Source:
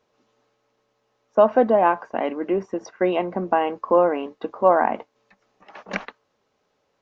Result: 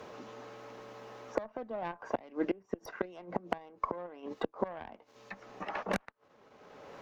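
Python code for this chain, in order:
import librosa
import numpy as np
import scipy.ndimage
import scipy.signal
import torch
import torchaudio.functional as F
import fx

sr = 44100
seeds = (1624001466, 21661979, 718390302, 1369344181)

p1 = fx.tracing_dist(x, sr, depth_ms=0.21)
p2 = fx.level_steps(p1, sr, step_db=18)
p3 = p1 + F.gain(torch.from_numpy(p2), -2.0).numpy()
p4 = fx.gate_flip(p3, sr, shuts_db=-14.0, range_db=-27)
p5 = fx.clip_asym(p4, sr, top_db=-13.5, bottom_db=-11.5)
p6 = fx.band_squash(p5, sr, depth_pct=70)
y = F.gain(torch.from_numpy(p6), -3.0).numpy()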